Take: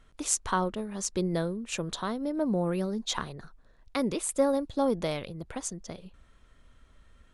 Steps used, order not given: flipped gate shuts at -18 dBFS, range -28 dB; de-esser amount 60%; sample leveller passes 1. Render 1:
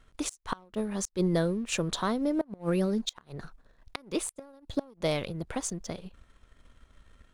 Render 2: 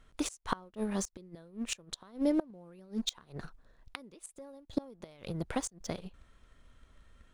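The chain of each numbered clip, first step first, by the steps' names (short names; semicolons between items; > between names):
flipped gate > de-esser > sample leveller; sample leveller > flipped gate > de-esser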